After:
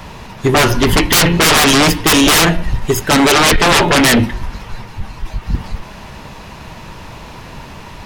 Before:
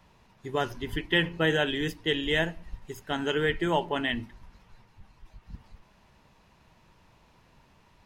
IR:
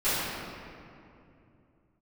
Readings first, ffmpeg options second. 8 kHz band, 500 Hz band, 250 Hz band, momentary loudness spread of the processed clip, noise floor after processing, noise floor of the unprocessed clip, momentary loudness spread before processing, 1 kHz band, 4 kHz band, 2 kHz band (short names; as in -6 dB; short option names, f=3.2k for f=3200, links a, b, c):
+35.5 dB, +14.0 dB, +18.0 dB, 21 LU, -34 dBFS, -62 dBFS, 16 LU, +20.0 dB, +18.5 dB, +16.0 dB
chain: -af "aeval=exprs='0.237*sin(PI/2*7.94*val(0)/0.237)':c=same,bandreject=f=178.8:t=h:w=4,bandreject=f=357.6:t=h:w=4,bandreject=f=536.4:t=h:w=4,bandreject=f=715.2:t=h:w=4,bandreject=f=894:t=h:w=4,bandreject=f=1.0728k:t=h:w=4,bandreject=f=1.2516k:t=h:w=4,bandreject=f=1.4304k:t=h:w=4,bandreject=f=1.6092k:t=h:w=4,bandreject=f=1.788k:t=h:w=4,bandreject=f=1.9668k:t=h:w=4,bandreject=f=2.1456k:t=h:w=4,bandreject=f=2.3244k:t=h:w=4,bandreject=f=2.5032k:t=h:w=4,bandreject=f=2.682k:t=h:w=4,bandreject=f=2.8608k:t=h:w=4,bandreject=f=3.0396k:t=h:w=4,bandreject=f=3.2184k:t=h:w=4,bandreject=f=3.3972k:t=h:w=4,bandreject=f=3.576k:t=h:w=4,bandreject=f=3.7548k:t=h:w=4,bandreject=f=3.9336k:t=h:w=4,bandreject=f=4.1124k:t=h:w=4,bandreject=f=4.2912k:t=h:w=4,volume=6dB"